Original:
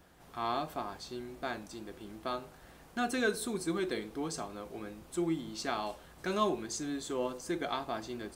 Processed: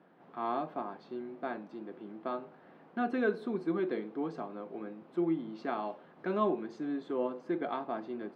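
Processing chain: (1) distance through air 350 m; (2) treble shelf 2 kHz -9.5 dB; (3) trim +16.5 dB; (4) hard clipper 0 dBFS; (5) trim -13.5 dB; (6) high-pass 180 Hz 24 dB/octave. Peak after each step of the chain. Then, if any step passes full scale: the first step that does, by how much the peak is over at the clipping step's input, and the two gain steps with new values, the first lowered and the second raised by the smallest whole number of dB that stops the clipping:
-18.5 dBFS, -20.0 dBFS, -3.5 dBFS, -3.5 dBFS, -17.0 dBFS, -18.5 dBFS; nothing clips

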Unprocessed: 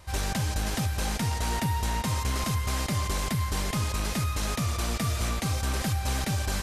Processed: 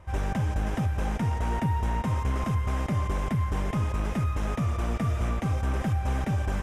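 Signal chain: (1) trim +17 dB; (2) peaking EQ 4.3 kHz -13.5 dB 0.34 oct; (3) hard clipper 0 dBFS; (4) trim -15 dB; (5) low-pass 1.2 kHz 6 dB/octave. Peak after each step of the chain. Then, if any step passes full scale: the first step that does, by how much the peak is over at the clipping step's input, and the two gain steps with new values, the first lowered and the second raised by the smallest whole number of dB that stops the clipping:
-2.0 dBFS, -1.5 dBFS, -1.5 dBFS, -16.5 dBFS, -17.5 dBFS; nothing clips

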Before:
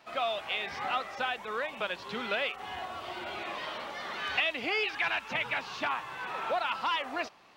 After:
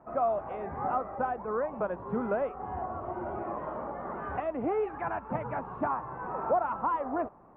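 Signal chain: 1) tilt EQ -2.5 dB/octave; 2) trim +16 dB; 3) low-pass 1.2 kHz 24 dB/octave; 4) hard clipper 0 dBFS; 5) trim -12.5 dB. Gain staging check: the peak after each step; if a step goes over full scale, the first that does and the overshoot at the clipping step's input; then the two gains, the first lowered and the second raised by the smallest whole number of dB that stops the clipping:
-19.0 dBFS, -3.0 dBFS, -5.0 dBFS, -5.0 dBFS, -17.5 dBFS; nothing clips

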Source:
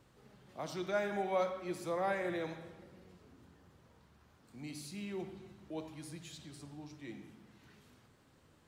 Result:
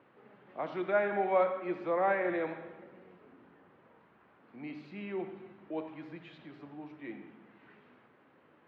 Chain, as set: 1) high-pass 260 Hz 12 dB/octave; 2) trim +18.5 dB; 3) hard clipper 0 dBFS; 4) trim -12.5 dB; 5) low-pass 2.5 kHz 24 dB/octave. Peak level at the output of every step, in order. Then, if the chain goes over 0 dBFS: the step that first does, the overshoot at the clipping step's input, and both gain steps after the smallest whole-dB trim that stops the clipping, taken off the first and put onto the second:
-22.5 dBFS, -4.0 dBFS, -4.0 dBFS, -16.5 dBFS, -16.5 dBFS; nothing clips

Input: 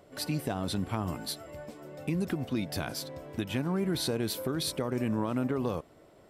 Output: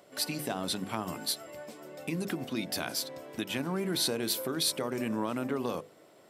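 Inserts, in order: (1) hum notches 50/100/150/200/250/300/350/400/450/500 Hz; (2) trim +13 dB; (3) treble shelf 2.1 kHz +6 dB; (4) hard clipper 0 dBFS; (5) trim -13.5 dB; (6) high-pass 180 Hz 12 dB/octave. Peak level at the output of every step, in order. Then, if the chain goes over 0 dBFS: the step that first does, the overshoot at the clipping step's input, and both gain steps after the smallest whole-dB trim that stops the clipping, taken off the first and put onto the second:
-19.0 dBFS, -6.0 dBFS, -2.5 dBFS, -2.5 dBFS, -16.0 dBFS, -15.5 dBFS; nothing clips

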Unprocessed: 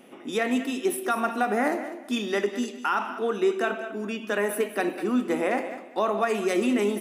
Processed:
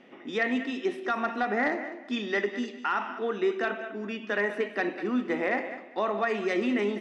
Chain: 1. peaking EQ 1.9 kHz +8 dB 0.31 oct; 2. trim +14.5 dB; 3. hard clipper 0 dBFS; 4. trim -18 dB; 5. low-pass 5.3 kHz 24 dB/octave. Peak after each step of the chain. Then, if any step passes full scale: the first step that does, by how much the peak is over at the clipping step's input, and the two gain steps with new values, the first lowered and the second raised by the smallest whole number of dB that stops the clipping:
-10.5 dBFS, +4.0 dBFS, 0.0 dBFS, -18.0 dBFS, -17.0 dBFS; step 2, 4.0 dB; step 2 +10.5 dB, step 4 -14 dB

